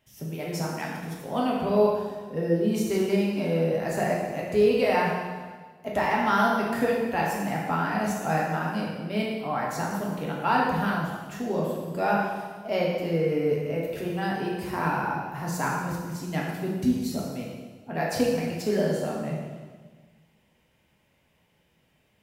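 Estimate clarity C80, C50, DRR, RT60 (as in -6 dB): 3.0 dB, 0.5 dB, -4.0 dB, 1.5 s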